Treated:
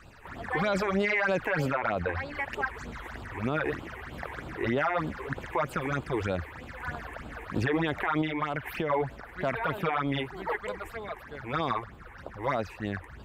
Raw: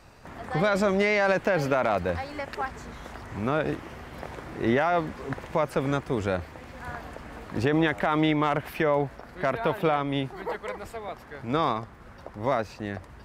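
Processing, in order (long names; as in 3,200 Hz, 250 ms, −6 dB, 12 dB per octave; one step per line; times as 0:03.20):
parametric band 1,600 Hz +9 dB 1.1 octaves
all-pass phaser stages 8, 3.2 Hz, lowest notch 170–1,900 Hz
0:01.71–0:02.35: high-shelf EQ 5,600 Hz −10.5 dB
0:08.21–0:08.90: downward compressor 5 to 1, threshold −27 dBFS, peak gain reduction 7.5 dB
brickwall limiter −18 dBFS, peak gain reduction 8.5 dB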